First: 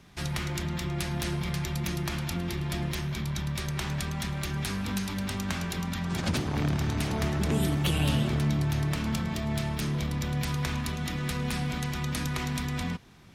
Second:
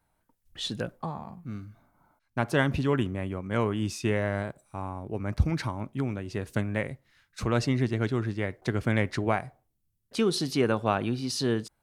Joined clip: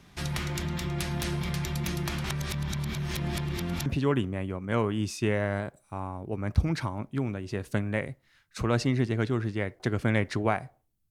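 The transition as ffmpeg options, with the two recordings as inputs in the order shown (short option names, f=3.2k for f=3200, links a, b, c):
-filter_complex "[0:a]apad=whole_dur=11.1,atrim=end=11.1,asplit=2[a][b];[a]atrim=end=2.242[c];[b]atrim=start=2.238:end=3.862,asetpts=PTS-STARTPTS,areverse[d];[1:a]atrim=start=2.678:end=9.92[e];[c][d]acrossfade=d=0.004:c1=hsin:c2=hsin[f];[f][e]acrossfade=d=0.004:c1=hsin:c2=hsin"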